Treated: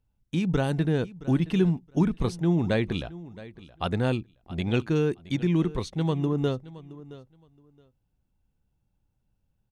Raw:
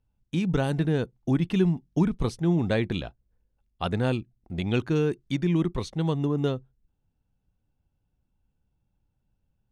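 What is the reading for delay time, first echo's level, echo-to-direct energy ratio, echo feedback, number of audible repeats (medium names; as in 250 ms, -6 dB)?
670 ms, -18.0 dB, -18.0 dB, 18%, 2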